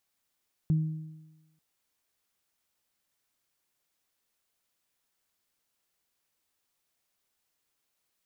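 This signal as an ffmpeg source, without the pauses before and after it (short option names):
-f lavfi -i "aevalsrc='0.1*pow(10,-3*t/1.07)*sin(2*PI*157*t)+0.0119*pow(10,-3*t/1.18)*sin(2*PI*314*t)':d=0.89:s=44100"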